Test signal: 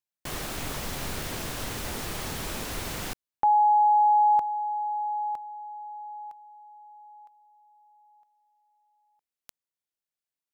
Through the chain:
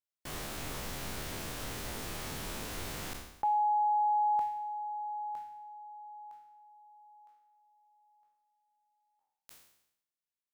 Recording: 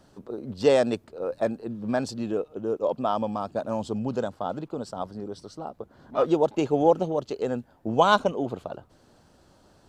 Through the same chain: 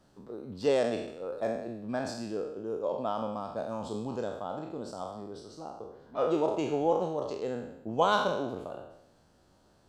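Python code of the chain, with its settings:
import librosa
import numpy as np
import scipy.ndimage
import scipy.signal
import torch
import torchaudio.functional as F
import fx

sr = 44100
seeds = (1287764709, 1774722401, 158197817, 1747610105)

y = fx.spec_trails(x, sr, decay_s=0.82)
y = y * librosa.db_to_amplitude(-8.5)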